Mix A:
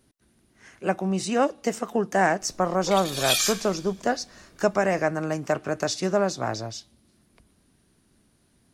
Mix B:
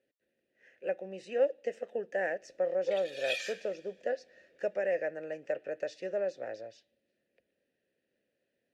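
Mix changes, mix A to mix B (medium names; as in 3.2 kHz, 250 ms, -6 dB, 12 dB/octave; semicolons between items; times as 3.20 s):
background +3.5 dB; master: add vowel filter e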